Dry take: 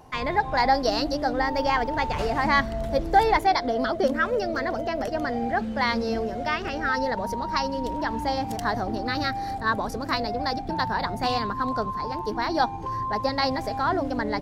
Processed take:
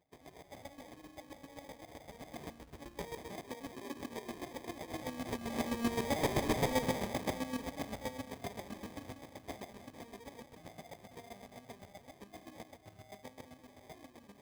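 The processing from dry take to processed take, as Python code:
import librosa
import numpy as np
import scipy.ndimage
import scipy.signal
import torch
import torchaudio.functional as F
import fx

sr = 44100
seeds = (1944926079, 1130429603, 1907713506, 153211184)

y = fx.self_delay(x, sr, depth_ms=0.36)
y = fx.doppler_pass(y, sr, speed_mps=16, closest_m=3.5, pass_at_s=6.4)
y = fx.vibrato(y, sr, rate_hz=1.2, depth_cents=5.6)
y = fx.room_flutter(y, sr, wall_m=6.0, rt60_s=0.21)
y = fx.formant_shift(y, sr, semitones=-4)
y = fx.echo_alternate(y, sr, ms=151, hz=830.0, feedback_pct=50, wet_db=-6.0)
y = fx.sample_hold(y, sr, seeds[0], rate_hz=1400.0, jitter_pct=0)
y = scipy.signal.sosfilt(scipy.signal.butter(2, 68.0, 'highpass', fs=sr, output='sos'), y)
y = np.clip(y, -10.0 ** (-31.0 / 20.0), 10.0 ** (-31.0 / 20.0))
y = fx.chopper(y, sr, hz=7.7, depth_pct=65, duty_pct=25)
y = y * librosa.db_to_amplitude(5.5)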